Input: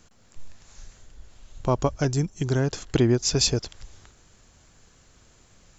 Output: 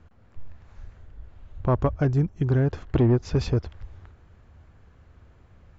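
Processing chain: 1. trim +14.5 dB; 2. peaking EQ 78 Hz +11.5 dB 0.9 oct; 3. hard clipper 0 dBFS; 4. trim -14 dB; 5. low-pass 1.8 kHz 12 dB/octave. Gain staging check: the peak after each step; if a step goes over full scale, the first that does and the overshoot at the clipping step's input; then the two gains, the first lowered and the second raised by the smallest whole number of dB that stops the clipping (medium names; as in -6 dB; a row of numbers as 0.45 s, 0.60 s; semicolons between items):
+6.5 dBFS, +8.0 dBFS, 0.0 dBFS, -14.0 dBFS, -13.5 dBFS; step 1, 8.0 dB; step 1 +6.5 dB, step 4 -6 dB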